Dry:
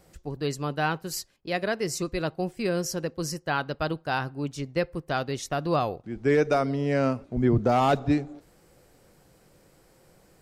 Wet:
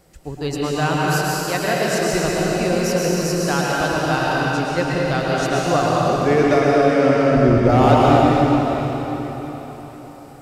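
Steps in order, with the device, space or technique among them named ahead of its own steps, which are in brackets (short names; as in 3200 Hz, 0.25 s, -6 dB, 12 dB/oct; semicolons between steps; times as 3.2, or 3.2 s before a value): cathedral (reverb RT60 4.5 s, pre-delay 0.105 s, DRR -5.5 dB); gain +3.5 dB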